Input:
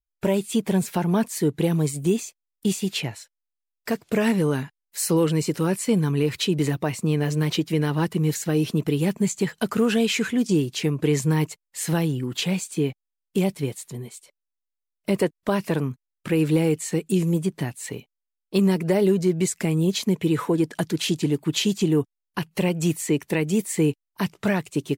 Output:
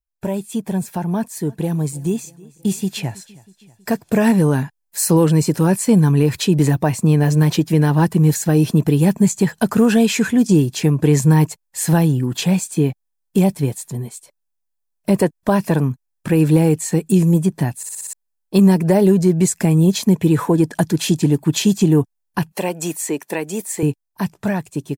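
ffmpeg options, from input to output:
ffmpeg -i in.wav -filter_complex "[0:a]asplit=3[link_01][link_02][link_03];[link_01]afade=type=out:start_time=1.45:duration=0.02[link_04];[link_02]aecho=1:1:321|642|963:0.0668|0.0354|0.0188,afade=type=in:start_time=1.45:duration=0.02,afade=type=out:start_time=3.9:duration=0.02[link_05];[link_03]afade=type=in:start_time=3.9:duration=0.02[link_06];[link_04][link_05][link_06]amix=inputs=3:normalize=0,asettb=1/sr,asplit=3[link_07][link_08][link_09];[link_07]atrim=end=22.524[link_10];[link_08]atrim=start=22.52:end=23.83,asetpts=PTS-STARTPTS,afade=type=in:duration=0.004:curve=qsin,afade=type=out:start_time=1.306:duration=0.004:curve=qsin,highpass=380[link_11];[link_09]atrim=start=23.826[link_12];[link_10][link_11]acrossfade=duration=0.004:curve1=hsin:curve2=qsin[link_13];[link_13][link_12]acrossfade=duration=0.004:curve1=qsin:curve2=hsin,asplit=7[link_14][link_15][link_16][link_17][link_18][link_19][link_20];[link_14]atrim=end=17.832[link_21];[link_15]atrim=start=17.768:end=17.832[link_22];[link_16]atrim=start=17.768:end=17.832[link_23];[link_17]atrim=start=17.768:end=17.832[link_24];[link_18]atrim=start=17.768:end=17.832[link_25];[link_19]atrim=start=17.768:end=17.832[link_26];[link_20]atrim=start=18.128[link_27];[link_21][link_22]acrossfade=duration=0.004:curve1=hsin:curve2=hsin[link_28];[link_28][link_23]acrossfade=duration=0.004:curve1=hsin:curve2=hsin[link_29];[link_29][link_24]acrossfade=duration=0.004:curve1=hsin:curve2=hsin[link_30];[link_30][link_25]acrossfade=duration=0.004:curve1=hsin:curve2=hsin[link_31];[link_31][link_26]acrossfade=duration=0.004:curve1=hsin:curve2=hsin[link_32];[link_32][link_27]acrossfade=duration=0.004:curve1=hsin:curve2=hsin,equalizer=frequency=2900:width=0.74:gain=-7.5,dynaudnorm=framelen=470:gausssize=13:maxgain=10dB,aecho=1:1:1.2:0.32" out.wav

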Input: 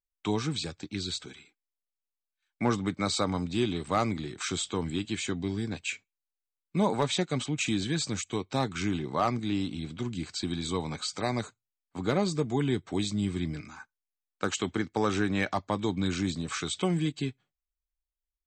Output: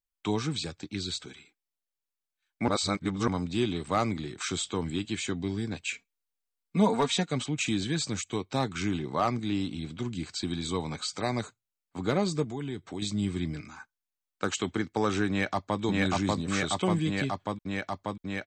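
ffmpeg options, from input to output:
ffmpeg -i in.wav -filter_complex "[0:a]asettb=1/sr,asplit=3[link_01][link_02][link_03];[link_01]atrim=end=5.934[link_04];[link_02]atrim=start=5.93:end=7.3,asetpts=PTS-STARTPTS,afade=type=in:duration=0.004:curve=qsin,afade=type=out:start_time=1.366:duration=0.004:curve=qsin,aecho=1:1:4.3:0.65,atrim=end_sample=60417[link_05];[link_03]atrim=start=7.296[link_06];[link_04][link_05]acrossfade=duration=0.004:curve1=hsin:curve2=qsin[link_07];[link_07][link_06]acrossfade=duration=0.004:curve1=qsin:curve2=hsin,asettb=1/sr,asplit=3[link_08][link_09][link_10];[link_08]atrim=end=12.444[link_11];[link_09]atrim=start=12.44:end=13.02,asetpts=PTS-STARTPTS,afade=type=in:duration=0.004:curve=qsin,afade=type=out:start_time=0.576:duration=0.004:curve=qsin,acompressor=threshold=-37dB:ratio=2:attack=3.2:release=140:knee=1:detection=peak[link_12];[link_10]atrim=start=13.016[link_13];[link_11][link_12]acrossfade=duration=0.004:curve1=hsin:curve2=qsin[link_14];[link_14][link_13]acrossfade=duration=0.004:curve1=qsin:curve2=hsin,asplit=2[link_15][link_16];[link_16]afade=type=in:start_time=15.29:duration=0.01,afade=type=out:start_time=15.81:duration=0.01,aecho=0:1:590|1180|1770|2360|2950|3540|4130|4720|5310|5900|6490|7080:1|0.85|0.7225|0.614125|0.522006|0.443705|0.37715|0.320577|0.272491|0.231617|0.196874|0.167343[link_17];[link_15][link_17]amix=inputs=2:normalize=0,asplit=3[link_18][link_19][link_20];[link_18]atrim=end=2.682[link_21];[link_19]atrim=start=2.678:end=3.282,asetpts=PTS-STARTPTS,areverse[link_22];[link_20]atrim=start=3.278[link_23];[link_21][link_22]acrossfade=duration=0.004:curve1=hsin:curve2=hsin[link_24];[link_24][link_23]acrossfade=duration=0.004:curve1=hsin:curve2=hsin" out.wav

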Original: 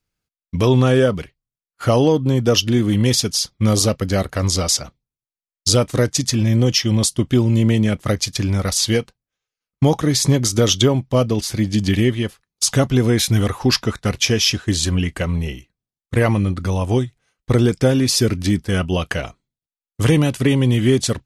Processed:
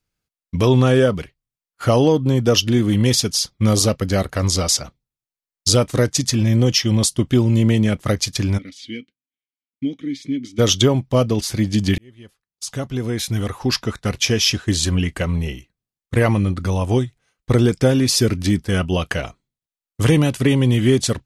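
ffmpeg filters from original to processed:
ffmpeg -i in.wav -filter_complex "[0:a]asplit=3[link_01][link_02][link_03];[link_01]afade=type=out:start_time=8.57:duration=0.02[link_04];[link_02]asplit=3[link_05][link_06][link_07];[link_05]bandpass=frequency=270:width_type=q:width=8,volume=0dB[link_08];[link_06]bandpass=frequency=2290:width_type=q:width=8,volume=-6dB[link_09];[link_07]bandpass=frequency=3010:width_type=q:width=8,volume=-9dB[link_10];[link_08][link_09][link_10]amix=inputs=3:normalize=0,afade=type=in:start_time=8.57:duration=0.02,afade=type=out:start_time=10.58:duration=0.02[link_11];[link_03]afade=type=in:start_time=10.58:duration=0.02[link_12];[link_04][link_11][link_12]amix=inputs=3:normalize=0,asplit=2[link_13][link_14];[link_13]atrim=end=11.98,asetpts=PTS-STARTPTS,afade=type=out:start_time=11.976:duration=0.004:curve=hsin[link_15];[link_14]atrim=start=11.98,asetpts=PTS-STARTPTS,afade=type=in:duration=2.58[link_16];[link_15][link_16]concat=n=2:v=0:a=1" out.wav

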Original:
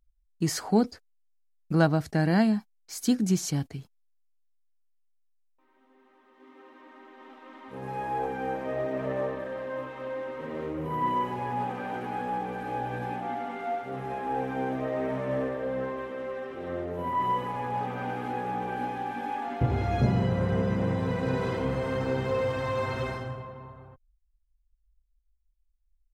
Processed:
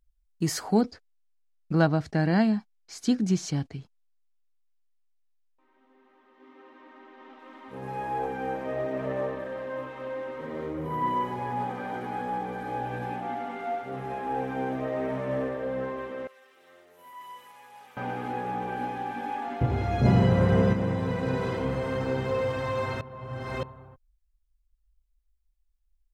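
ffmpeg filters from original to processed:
ffmpeg -i in.wav -filter_complex "[0:a]asettb=1/sr,asplit=3[link_01][link_02][link_03];[link_01]atrim=end=0.814[link_04];[link_02]atrim=start=0.81:end=7.39,asetpts=PTS-STARTPTS,afade=type=in:duration=0.004:curve=qsin,afade=type=out:start_time=6.576:duration=0.004:curve=qsin,lowpass=5800[link_05];[link_03]atrim=start=7.386[link_06];[link_04][link_05]acrossfade=duration=0.004:curve1=hsin:curve2=qsin[link_07];[link_07][link_06]acrossfade=duration=0.004:curve1=qsin:curve2=hsin,asettb=1/sr,asplit=3[link_08][link_09][link_10];[link_08]atrim=end=10.404[link_11];[link_09]atrim=start=10.4:end=12.81,asetpts=PTS-STARTPTS,afade=type=in:duration=0.004:curve=qsin,afade=type=out:start_time=2.406:duration=0.004:curve=qsin,bandreject=frequency=2700:width=10[link_12];[link_10]atrim=start=12.806[link_13];[link_11][link_12]acrossfade=duration=0.004:curve1=hsin:curve2=qsin[link_14];[link_14][link_13]acrossfade=duration=0.004:curve1=qsin:curve2=hsin,asettb=1/sr,asplit=3[link_15][link_16][link_17];[link_15]atrim=end=16.274[link_18];[link_16]atrim=start=16.27:end=17.97,asetpts=PTS-STARTPTS,afade=type=in:duration=0.004:curve=qsin,afade=type=out:start_time=1.696:duration=0.004:curve=qsin,aderivative[link_19];[link_17]atrim=start=17.966[link_20];[link_18][link_19]acrossfade=duration=0.004:curve1=hsin:curve2=qsin[link_21];[link_21][link_20]acrossfade=duration=0.004:curve1=qsin:curve2=hsin,asettb=1/sr,asplit=3[link_22][link_23][link_24];[link_22]atrim=end=20.054[link_25];[link_23]atrim=start=20.05:end=20.73,asetpts=PTS-STARTPTS,afade=type=in:duration=0.004:curve=qsin,afade=type=out:start_time=0.676:duration=0.004:curve=qsin,acontrast=32[link_26];[link_24]atrim=start=20.726[link_27];[link_25][link_26]acrossfade=duration=0.004:curve1=hsin:curve2=qsin[link_28];[link_28][link_27]acrossfade=duration=0.004:curve1=qsin:curve2=hsin,asplit=3[link_29][link_30][link_31];[link_29]atrim=end=23.012[link_32];[link_30]atrim=start=23.008:end=23.632,asetpts=PTS-STARTPTS,areverse[link_33];[link_31]atrim=start=23.628[link_34];[link_32][link_33]acrossfade=duration=0.004:curve1=hsin:curve2=hsin[link_35];[link_35][link_34]acrossfade=duration=0.004:curve1=hsin:curve2=hsin" out.wav

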